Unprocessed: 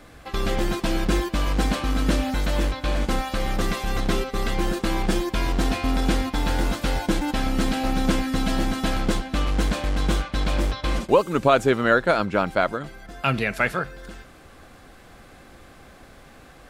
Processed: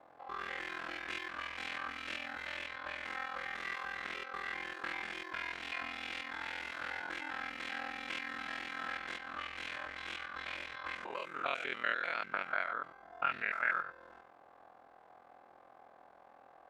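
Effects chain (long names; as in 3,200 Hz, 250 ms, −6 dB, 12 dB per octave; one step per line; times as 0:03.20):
spectrum averaged block by block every 100 ms
ring modulation 21 Hz
envelope filter 770–2,400 Hz, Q 2.6, up, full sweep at −20.5 dBFS
level +1 dB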